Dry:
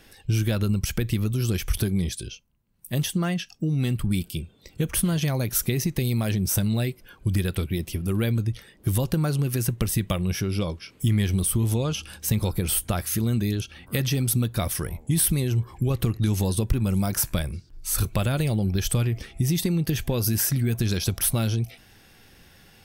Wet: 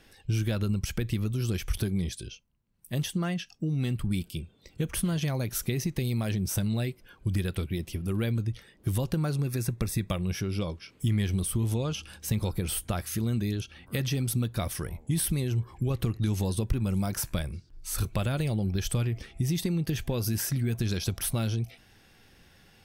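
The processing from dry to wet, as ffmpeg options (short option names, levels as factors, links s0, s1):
-filter_complex "[0:a]asettb=1/sr,asplit=3[s0][s1][s2];[s0]atrim=end=9.354[s3];[s1]atrim=start=9.35:end=10.11,asetpts=PTS-STARTPTS,afade=t=in:d=0.004:c=qsin,afade=t=out:st=0.756:d=0.004:c=qsin,asuperstop=centerf=3000:order=8:qfactor=6.2[s4];[s2]atrim=start=10.106[s5];[s3][s4]acrossfade=d=0.004:c1=hsin:c2=qsin[s6];[s6][s5]acrossfade=d=0.004:c1=qsin:c2=hsin,highshelf=f=11000:g=-8,volume=0.596"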